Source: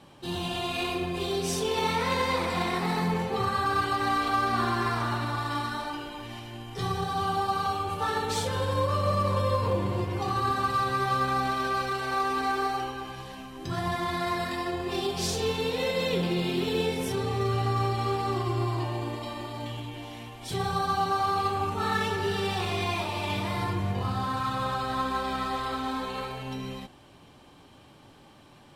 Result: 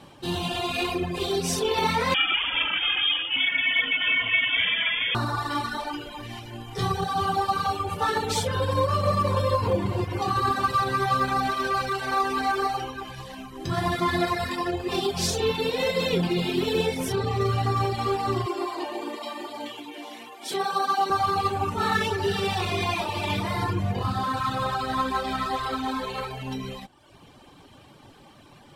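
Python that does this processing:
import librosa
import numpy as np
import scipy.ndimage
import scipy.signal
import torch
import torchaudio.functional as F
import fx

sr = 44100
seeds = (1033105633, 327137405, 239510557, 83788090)

y = fx.freq_invert(x, sr, carrier_hz=3400, at=(2.14, 5.15))
y = fx.reverb_throw(y, sr, start_s=13.72, length_s=0.46, rt60_s=2.6, drr_db=1.5)
y = fx.highpass(y, sr, hz=260.0, slope=24, at=(18.46, 21.1))
y = fx.dereverb_blind(y, sr, rt60_s=0.87)
y = y * librosa.db_to_amplitude(5.0)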